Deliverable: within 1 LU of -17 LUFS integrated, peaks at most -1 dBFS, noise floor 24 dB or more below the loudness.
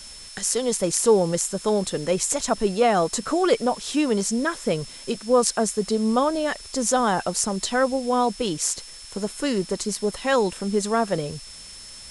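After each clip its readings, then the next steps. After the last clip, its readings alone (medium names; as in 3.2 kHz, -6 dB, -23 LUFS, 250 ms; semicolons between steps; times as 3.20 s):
steady tone 5.3 kHz; tone level -42 dBFS; noise floor -42 dBFS; noise floor target -47 dBFS; loudness -23.0 LUFS; peak level -1.5 dBFS; loudness target -17.0 LUFS
-> band-stop 5.3 kHz, Q 30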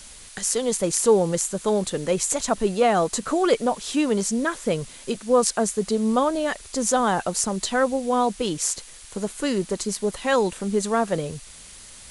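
steady tone not found; noise floor -44 dBFS; noise floor target -47 dBFS
-> noise reduction 6 dB, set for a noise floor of -44 dBFS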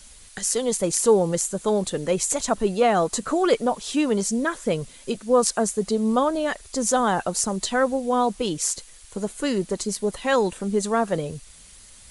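noise floor -48 dBFS; loudness -23.5 LUFS; peak level -2.5 dBFS; loudness target -17.0 LUFS
-> trim +6.5 dB; peak limiter -1 dBFS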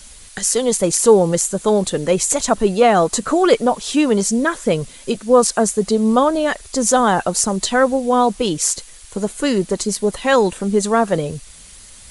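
loudness -17.0 LUFS; peak level -1.0 dBFS; noise floor -41 dBFS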